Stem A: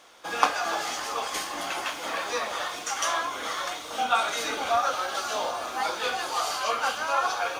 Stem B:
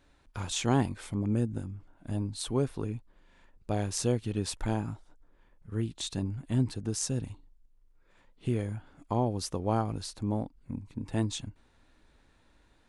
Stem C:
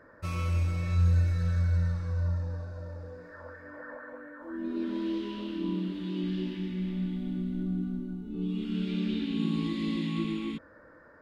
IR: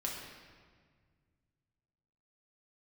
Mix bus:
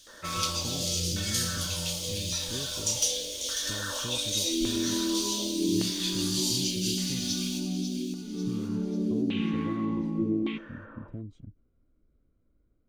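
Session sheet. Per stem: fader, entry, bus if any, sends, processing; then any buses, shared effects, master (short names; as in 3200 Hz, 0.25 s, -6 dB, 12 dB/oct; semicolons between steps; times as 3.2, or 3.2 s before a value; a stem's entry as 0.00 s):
+2.5 dB, 0.00 s, send -4.5 dB, echo send -6 dB, inverse Chebyshev band-stop 260–1300 Hz, stop band 60 dB; hard clip -22.5 dBFS, distortion -29 dB
-4.0 dB, 0.00 s, no send, no echo send, compressor, threshold -29 dBFS, peak gain reduction 10 dB; running mean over 50 samples
+1.0 dB, 0.00 s, send -16 dB, no echo send, HPF 200 Hz 12 dB/oct; gate with hold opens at -46 dBFS; LFO low-pass saw down 0.86 Hz 350–3000 Hz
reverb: on, RT60 1.7 s, pre-delay 5 ms
echo: feedback echo 0.544 s, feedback 42%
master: dry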